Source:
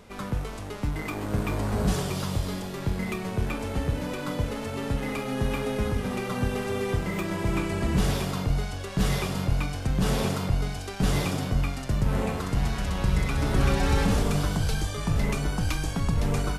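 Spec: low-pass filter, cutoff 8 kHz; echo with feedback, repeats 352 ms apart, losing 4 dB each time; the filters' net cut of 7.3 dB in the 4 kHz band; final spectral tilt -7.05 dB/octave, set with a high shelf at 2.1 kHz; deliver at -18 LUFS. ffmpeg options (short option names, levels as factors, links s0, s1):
-af "lowpass=8000,highshelf=f=2100:g=-6,equalizer=f=4000:t=o:g=-3.5,aecho=1:1:352|704|1056|1408|1760|2112|2464|2816|3168:0.631|0.398|0.25|0.158|0.0994|0.0626|0.0394|0.0249|0.0157,volume=2.82"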